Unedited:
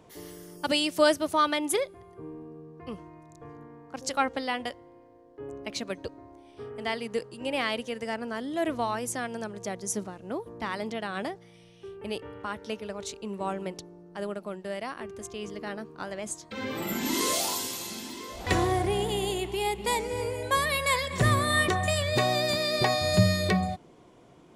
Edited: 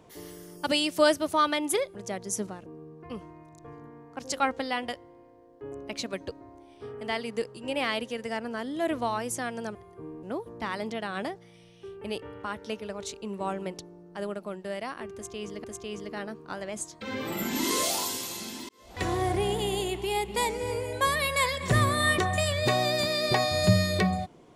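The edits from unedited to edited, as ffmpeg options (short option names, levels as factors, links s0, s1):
-filter_complex "[0:a]asplit=7[s0][s1][s2][s3][s4][s5][s6];[s0]atrim=end=1.952[s7];[s1]atrim=start=9.518:end=10.232[s8];[s2]atrim=start=2.428:end=9.522[s9];[s3]atrim=start=1.948:end=2.432[s10];[s4]atrim=start=10.228:end=15.642[s11];[s5]atrim=start=15.138:end=18.19,asetpts=PTS-STARTPTS,afade=t=out:st=3.048:d=0.004:c=hsin[s12];[s6]atrim=start=18.19,asetpts=PTS-STARTPTS,afade=t=in:d=0.64[s13];[s7][s8]acrossfade=d=0.004:c1=hsin:c2=hsin[s14];[s14][s9]acrossfade=d=0.004:c1=hsin:c2=hsin[s15];[s15][s10]acrossfade=d=0.004:c1=hsin:c2=hsin[s16];[s16][s11]acrossfade=d=0.004:c1=hsin:c2=hsin[s17];[s12][s13]concat=n=2:v=0:a=1[s18];[s17][s18]acrossfade=d=0.004:c1=hsin:c2=hsin"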